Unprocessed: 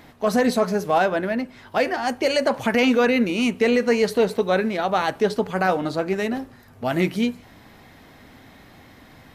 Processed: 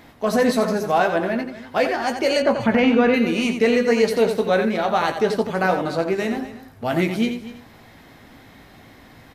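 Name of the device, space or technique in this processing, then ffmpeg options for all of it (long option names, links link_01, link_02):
slapback doubling: -filter_complex "[0:a]asplit=3[link_01][link_02][link_03];[link_02]adelay=18,volume=-8.5dB[link_04];[link_03]adelay=87,volume=-8dB[link_05];[link_01][link_04][link_05]amix=inputs=3:normalize=0,asettb=1/sr,asplit=3[link_06][link_07][link_08];[link_06]atrim=end=2.424[link_09];[link_07]atrim=start=2.42:end=3.14,asetpts=PTS-STARTPTS,afade=type=in:duration=0.004:curve=qsin,afade=type=out:start_time=0.716:duration=0.004:curve=qsin,bass=frequency=250:gain=6,treble=frequency=4000:gain=-15[link_10];[link_08]atrim=start=3.136[link_11];[link_09][link_10]acrossfade=duration=0.004:curve1=hsin:curve2=qsin[link_12];[link_12][link_11]acrossfade=duration=0.004:curve1=qsin:curve2=hsin,aecho=1:1:243:0.168"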